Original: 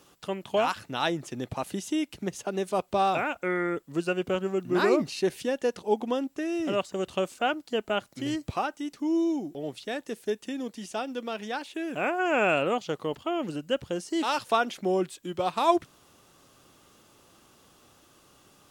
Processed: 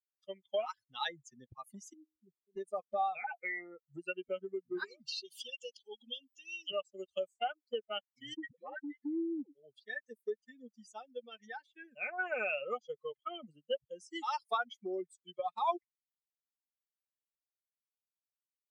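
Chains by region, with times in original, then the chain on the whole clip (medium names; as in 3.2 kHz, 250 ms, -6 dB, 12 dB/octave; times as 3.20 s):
1.93–2.56 s: steep low-pass 520 Hz 72 dB/octave + feedback comb 78 Hz, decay 1.5 s
3.24–3.97 s: peaking EQ 750 Hz +14.5 dB 0.41 oct + comb 6 ms, depth 72% + compression 4:1, threshold -26 dBFS
4.84–6.71 s: resonant high shelf 2.3 kHz +9 dB, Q 3 + compression 2:1, threshold -38 dBFS
8.34–9.55 s: cabinet simulation 160–3900 Hz, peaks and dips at 290 Hz +9 dB, 520 Hz +8 dB, 740 Hz -7 dB, 1.3 kHz -9 dB, 1.8 kHz +8 dB, 2.6 kHz -5 dB + phase dispersion highs, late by 97 ms, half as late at 420 Hz
whole clip: expander on every frequency bin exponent 3; compression 2.5:1, threshold -43 dBFS; three-band isolator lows -21 dB, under 350 Hz, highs -18 dB, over 5.1 kHz; trim +7.5 dB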